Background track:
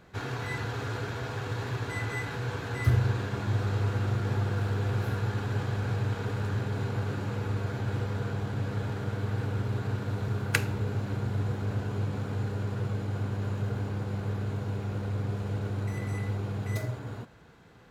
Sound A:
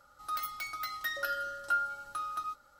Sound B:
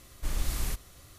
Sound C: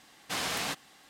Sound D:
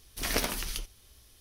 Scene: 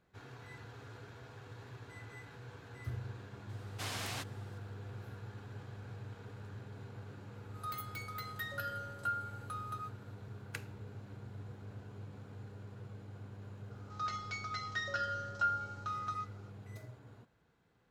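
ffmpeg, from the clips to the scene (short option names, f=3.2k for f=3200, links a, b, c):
-filter_complex "[1:a]asplit=2[a][b];[0:a]volume=-17.5dB[c];[a]bandreject=f=5.5k:w=5.4[d];[b]aresample=16000,aresample=44100[e];[3:a]atrim=end=1.09,asetpts=PTS-STARTPTS,volume=-8.5dB,afade=t=in:d=0.004:c=hsin,afade=t=out:st=1.086:d=0.004:c=hsin,adelay=153909S[f];[d]atrim=end=2.79,asetpts=PTS-STARTPTS,volume=-6.5dB,afade=t=in:d=0.004:c=hsin,afade=t=out:st=2.786:d=0.004:c=hsin,adelay=7350[g];[e]atrim=end=2.79,asetpts=PTS-STARTPTS,volume=-2.5dB,afade=t=in:d=0.004:c=hsin,afade=t=out:st=2.786:d=0.004:c=hsin,adelay=13710[h];[c][f][g][h]amix=inputs=4:normalize=0"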